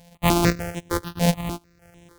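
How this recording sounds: a buzz of ramps at a fixed pitch in blocks of 256 samples; chopped level 1.1 Hz, depth 60%, duty 55%; notches that jump at a steady rate 6.7 Hz 340–4600 Hz

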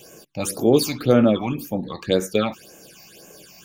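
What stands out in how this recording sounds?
phasing stages 8, 1.9 Hz, lowest notch 420–4200 Hz

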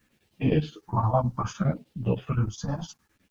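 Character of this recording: phasing stages 4, 0.64 Hz, lowest notch 380–1400 Hz; chopped level 9.7 Hz, depth 65%, duty 70%; a quantiser's noise floor 12-bit, dither none; a shimmering, thickened sound

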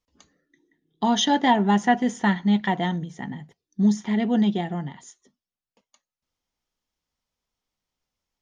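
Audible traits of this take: noise floor -93 dBFS; spectral tilt -5.0 dB/octave

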